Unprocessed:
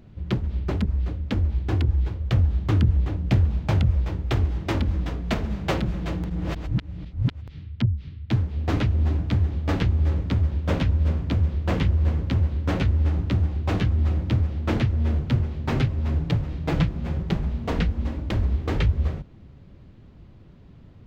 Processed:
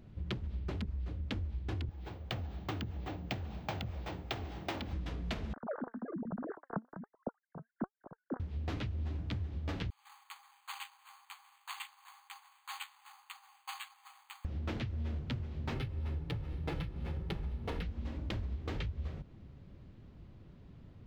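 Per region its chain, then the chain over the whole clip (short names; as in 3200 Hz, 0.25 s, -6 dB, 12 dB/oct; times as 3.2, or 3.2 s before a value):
1.89–4.93 HPF 290 Hz 6 dB/oct + bell 750 Hz +7 dB 0.38 oct + careless resampling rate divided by 2×, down filtered, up hold
5.53–8.4 sine-wave speech + elliptic low-pass 1600 Hz + flange 1.2 Hz, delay 1.2 ms, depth 3.5 ms, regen +75%
9.9–14.45 rippled Chebyshev high-pass 780 Hz, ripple 9 dB + careless resampling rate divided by 8×, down filtered, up hold
15.74–17.83 comb 2.3 ms, depth 33% + decimation joined by straight lines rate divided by 3×
whole clip: dynamic EQ 3500 Hz, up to +5 dB, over -50 dBFS, Q 0.78; compressor, threshold -29 dBFS; gain -6 dB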